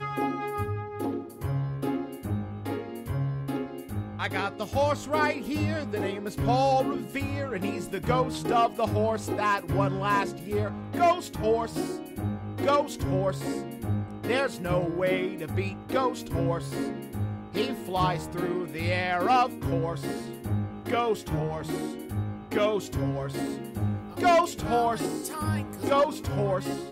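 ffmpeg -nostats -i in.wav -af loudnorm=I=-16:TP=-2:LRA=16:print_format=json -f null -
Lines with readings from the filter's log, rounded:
"input_i" : "-28.3",
"input_tp" : "-12.4",
"input_lra" : "3.5",
"input_thresh" : "-38.3",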